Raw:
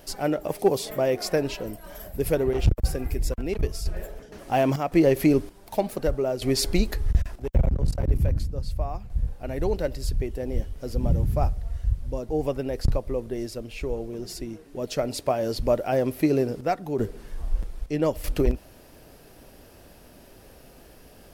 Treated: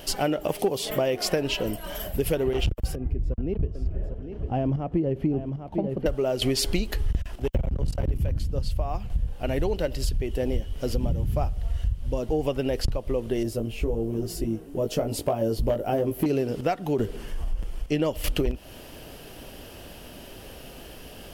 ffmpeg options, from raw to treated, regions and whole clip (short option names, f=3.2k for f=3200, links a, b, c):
-filter_complex "[0:a]asettb=1/sr,asplit=3[a][b][c];[a]atrim=end=2.954[d];[b]atrim=start=2.95:end=6.06,asetpts=PTS-STARTPTS,afade=t=in:d=0.004:c=qsin,afade=t=out:st=3.106:d=0.004:c=qsin,bandpass=f=100:t=q:w=0.53,aecho=1:1:801:0.316,atrim=end_sample=137151[e];[c]atrim=start=6.056[f];[d][e]acrossfade=d=0.004:c1=hsin:c2=qsin[g];[g][f]acrossfade=d=0.004:c1=qsin:c2=hsin,asettb=1/sr,asplit=3[h][i][j];[h]atrim=end=13.434[k];[i]atrim=start=13.43:end=16.26,asetpts=PTS-STARTPTS,afade=t=in:d=0.004:c=qsin,afade=t=out:st=2.826:d=0.004:c=qsin,equalizer=f=3.2k:t=o:w=2.9:g=-13.5,asoftclip=type=hard:threshold=-17dB,asplit=2[l][m];[m]adelay=18,volume=-3dB[n];[l][n]amix=inputs=2:normalize=0,atrim=end_sample=124803[o];[j]atrim=start=16.256[p];[k][o]acrossfade=d=0.004:c1=hsin:c2=qsin[q];[q][p]acrossfade=d=0.004:c1=qsin:c2=hsin,asettb=1/sr,asplit=3[r][s][t];[r]atrim=end=17.164[u];[s]atrim=start=17.16:end=17.92,asetpts=PTS-STARTPTS,afade=t=in:d=0.004:c=qsin,afade=t=out:st=0.756:d=0.004:c=qsin,equalizer=f=3.8k:w=5.4:g=-6.5,acompressor=threshold=-38dB:ratio=1.5:attack=3.2:release=140:knee=1:detection=peak[v];[t]atrim=start=17.916[w];[u][v]acrossfade=d=0.004:c1=hsin:c2=qsin[x];[x][w]acrossfade=d=0.004:c1=qsin:c2=hsin,equalizer=f=3k:w=4.2:g=10.5,acompressor=threshold=-28dB:ratio=6,volume=6.5dB"